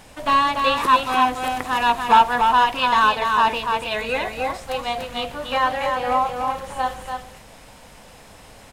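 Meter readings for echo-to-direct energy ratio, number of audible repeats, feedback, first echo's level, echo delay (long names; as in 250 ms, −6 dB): −5.0 dB, 1, repeats not evenly spaced, −5.0 dB, 290 ms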